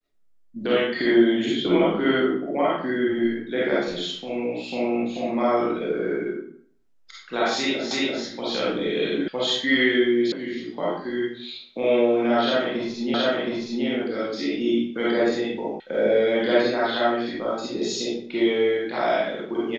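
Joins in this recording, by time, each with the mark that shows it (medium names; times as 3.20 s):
7.91 s: repeat of the last 0.34 s
9.28 s: sound stops dead
10.32 s: sound stops dead
13.14 s: repeat of the last 0.72 s
15.80 s: sound stops dead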